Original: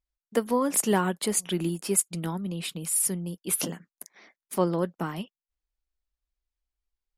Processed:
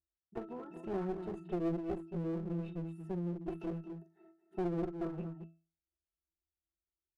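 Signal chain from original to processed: treble shelf 2.4 kHz -11.5 dB; pitch-class resonator E, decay 0.35 s; small resonant body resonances 380/890/1800/3700 Hz, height 16 dB, ringing for 70 ms; on a send: multi-tap echo 40/54/224 ms -12/-17.5/-12 dB; on the sum: compression 2:1, threshold -40 dBFS, peak gain reduction 9 dB; one-sided clip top -49.5 dBFS; trim +7 dB

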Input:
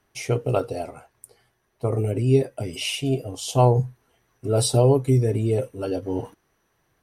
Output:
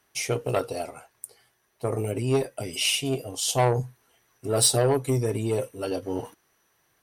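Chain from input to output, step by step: valve stage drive 13 dB, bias 0.35; tilt EQ +2 dB/octave; trim +1 dB

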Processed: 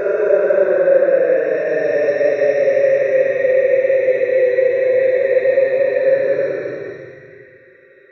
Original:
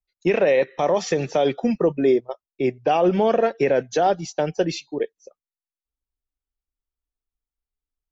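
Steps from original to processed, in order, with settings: static phaser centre 830 Hz, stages 6; Paulstretch 30×, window 0.05 s, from 0.41 s; trim +3 dB

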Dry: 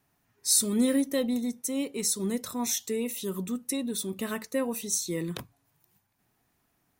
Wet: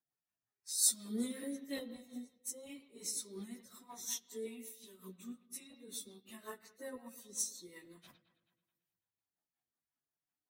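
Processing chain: bass shelf 270 Hz -11.5 dB; LFO notch square 4.2 Hz 450–2500 Hz; on a send: bucket-brigade echo 72 ms, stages 2048, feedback 65%, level -11.5 dB; on the sum: plain phase-vocoder stretch 1.5×; rotary cabinet horn 5.5 Hz; upward expansion 1.5:1, over -56 dBFS; trim -1.5 dB

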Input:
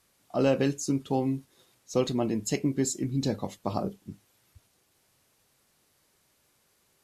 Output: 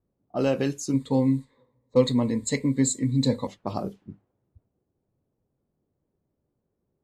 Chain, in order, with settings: level-controlled noise filter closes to 380 Hz, open at -26.5 dBFS; 0.93–3.47 s: rippled EQ curve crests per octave 1, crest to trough 16 dB

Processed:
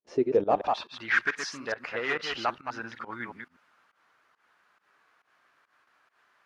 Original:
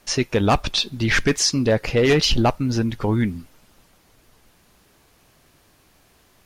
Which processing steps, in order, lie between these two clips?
chunks repeated in reverse 123 ms, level -5 dB; bass shelf 84 Hz -6 dB; gate with hold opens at -47 dBFS; band-pass sweep 390 Hz -> 1.4 kHz, 0.28–1.02 s; volume shaper 138 bpm, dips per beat 1, -19 dB, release 127 ms

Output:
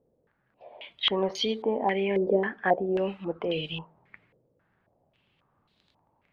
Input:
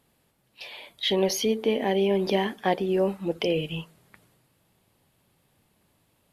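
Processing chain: crackle 11 per s -44 dBFS; step-sequenced low-pass 3.7 Hz 500–3900 Hz; trim -5 dB

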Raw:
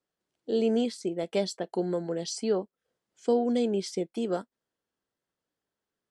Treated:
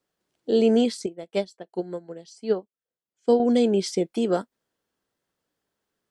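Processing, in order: 1.06–3.40 s: upward expansion 2.5:1, over -35 dBFS; trim +6.5 dB

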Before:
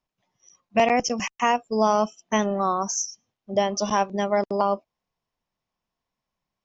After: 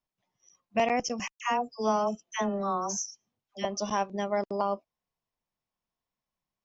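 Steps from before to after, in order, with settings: 1.32–3.65 s: phase dispersion lows, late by 94 ms, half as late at 940 Hz; trim -6.5 dB

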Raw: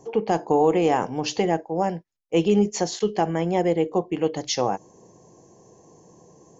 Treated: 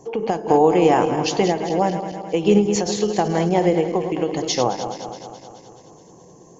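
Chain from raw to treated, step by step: backward echo that repeats 106 ms, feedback 76%, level -10 dB; endings held to a fixed fall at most 130 dB/s; trim +4 dB

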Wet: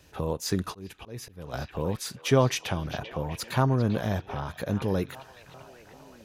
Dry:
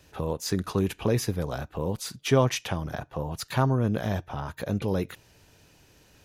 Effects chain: repeats whose band climbs or falls 393 ms, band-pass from 3.3 kHz, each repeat -0.7 oct, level -9 dB; 0.61–1.54 s: slow attack 506 ms

